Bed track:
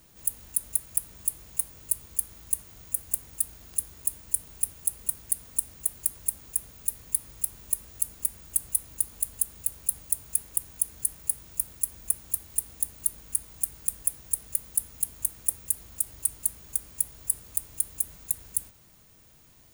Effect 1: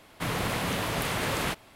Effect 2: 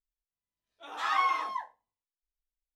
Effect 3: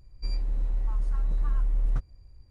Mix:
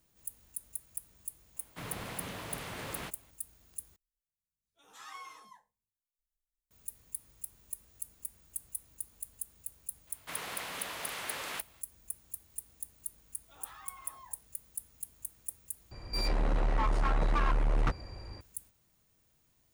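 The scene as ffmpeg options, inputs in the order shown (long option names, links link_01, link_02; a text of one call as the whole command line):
ffmpeg -i bed.wav -i cue0.wav -i cue1.wav -i cue2.wav -filter_complex "[1:a]asplit=2[link_01][link_02];[2:a]asplit=2[link_03][link_04];[0:a]volume=-14dB[link_05];[link_03]firequalizer=gain_entry='entry(190,0);entry(310,-19);entry(440,-12);entry(620,-23);entry(890,-21);entry(4700,-12);entry(6700,-2);entry(10000,0)':delay=0.05:min_phase=1[link_06];[link_02]highpass=frequency=970:poles=1[link_07];[link_04]acompressor=threshold=-36dB:ratio=6:attack=3.2:release=140:knee=1:detection=peak[link_08];[3:a]asplit=2[link_09][link_10];[link_10]highpass=frequency=720:poles=1,volume=36dB,asoftclip=type=tanh:threshold=-17dB[link_11];[link_09][link_11]amix=inputs=2:normalize=0,lowpass=frequency=1800:poles=1,volume=-6dB[link_12];[link_05]asplit=3[link_13][link_14][link_15];[link_13]atrim=end=3.964[link_16];[link_06]atrim=end=2.75,asetpts=PTS-STARTPTS,volume=-0.5dB[link_17];[link_14]atrim=start=6.706:end=15.914[link_18];[link_12]atrim=end=2.5,asetpts=PTS-STARTPTS,volume=-2.5dB[link_19];[link_15]atrim=start=18.406[link_20];[link_01]atrim=end=1.75,asetpts=PTS-STARTPTS,volume=-12.5dB,afade=type=in:duration=0.004:curve=hsin,afade=type=out:start_time=1.746:duration=0.004:curve=hsin,adelay=1560[link_21];[link_07]atrim=end=1.75,asetpts=PTS-STARTPTS,volume=-7.5dB,afade=type=in:duration=0.004:curve=hsin,afade=type=out:start_time=1.746:duration=0.004:curve=hsin,adelay=10070[link_22];[link_08]atrim=end=2.75,asetpts=PTS-STARTPTS,volume=-13dB,afade=type=in:duration=0.004:curve=hsin,afade=type=out:start_time=2.746:duration=0.004:curve=hsin,adelay=559188S[link_23];[link_16][link_17]acrossfade=duration=0.004:curve1=hsin:curve2=hsin[link_24];[link_24][link_18]acrossfade=duration=0.004:curve1=hsin:curve2=hsin[link_25];[link_25][link_19]acrossfade=duration=0.004:curve1=hsin:curve2=hsin[link_26];[link_26][link_20]acrossfade=duration=0.004:curve1=hsin:curve2=hsin[link_27];[link_27][link_21][link_22][link_23]amix=inputs=4:normalize=0" out.wav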